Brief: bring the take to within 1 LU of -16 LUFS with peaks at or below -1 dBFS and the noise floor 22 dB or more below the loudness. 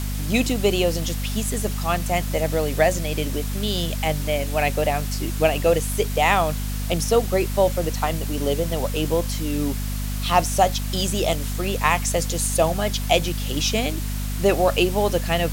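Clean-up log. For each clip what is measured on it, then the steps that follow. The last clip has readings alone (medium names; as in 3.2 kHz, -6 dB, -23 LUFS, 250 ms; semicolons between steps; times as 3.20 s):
hum 50 Hz; highest harmonic 250 Hz; hum level -24 dBFS; noise floor -26 dBFS; noise floor target -45 dBFS; loudness -22.5 LUFS; peak level -3.0 dBFS; loudness target -16.0 LUFS
-> de-hum 50 Hz, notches 5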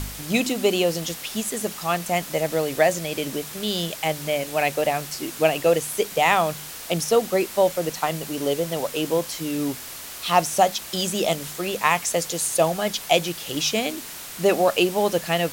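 hum not found; noise floor -37 dBFS; noise floor target -45 dBFS
-> noise print and reduce 8 dB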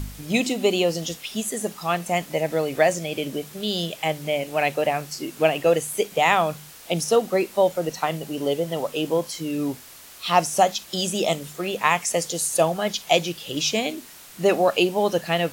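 noise floor -45 dBFS; noise floor target -46 dBFS
-> noise print and reduce 6 dB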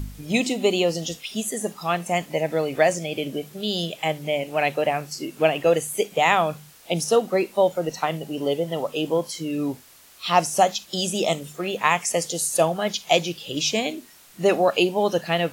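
noise floor -50 dBFS; loudness -23.5 LUFS; peak level -4.0 dBFS; loudness target -16.0 LUFS
-> trim +7.5 dB; peak limiter -1 dBFS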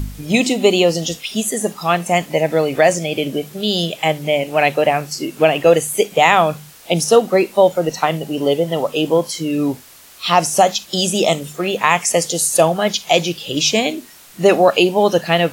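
loudness -16.5 LUFS; peak level -1.0 dBFS; noise floor -43 dBFS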